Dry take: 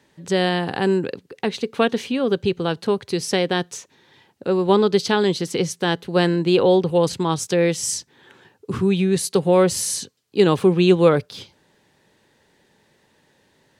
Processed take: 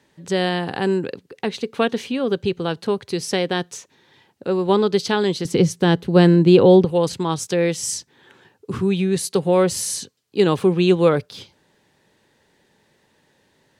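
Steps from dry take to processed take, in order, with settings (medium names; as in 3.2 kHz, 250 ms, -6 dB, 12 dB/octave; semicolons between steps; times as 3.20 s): 5.45–6.85 s: bass shelf 380 Hz +11.5 dB; trim -1 dB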